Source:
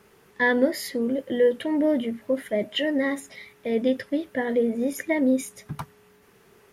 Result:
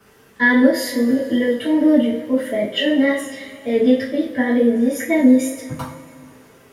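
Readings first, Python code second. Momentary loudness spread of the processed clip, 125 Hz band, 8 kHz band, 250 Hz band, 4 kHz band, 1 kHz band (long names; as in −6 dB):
13 LU, can't be measured, +6.5 dB, +9.5 dB, +7.0 dB, +5.0 dB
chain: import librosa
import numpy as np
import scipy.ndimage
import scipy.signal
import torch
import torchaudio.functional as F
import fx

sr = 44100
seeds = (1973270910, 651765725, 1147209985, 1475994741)

y = fx.rev_double_slope(x, sr, seeds[0], early_s=0.38, late_s=3.0, knee_db=-21, drr_db=-9.0)
y = fx.wow_flutter(y, sr, seeds[1], rate_hz=2.1, depth_cents=24.0)
y = y * librosa.db_to_amplitude(-3.0)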